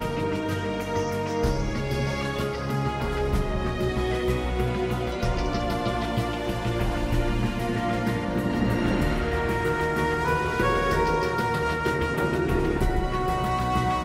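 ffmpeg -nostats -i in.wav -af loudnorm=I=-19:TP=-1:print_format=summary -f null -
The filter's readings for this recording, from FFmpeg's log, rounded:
Input Integrated:    -25.9 LUFS
Input True Peak:     -11.4 dBTP
Input LRA:             2.6 LU
Input Threshold:     -35.9 LUFS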